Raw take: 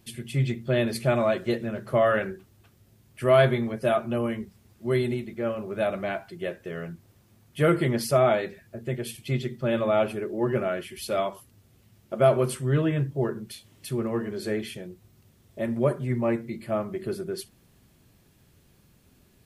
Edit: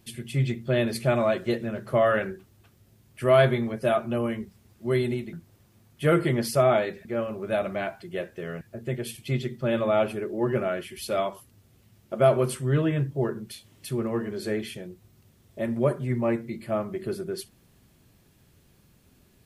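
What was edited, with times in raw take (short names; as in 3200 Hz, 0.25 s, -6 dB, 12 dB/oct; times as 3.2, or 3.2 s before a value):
5.33–6.89 move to 8.61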